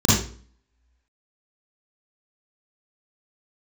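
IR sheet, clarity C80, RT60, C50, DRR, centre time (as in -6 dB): 5.0 dB, 0.45 s, -1.5 dB, -8.5 dB, 62 ms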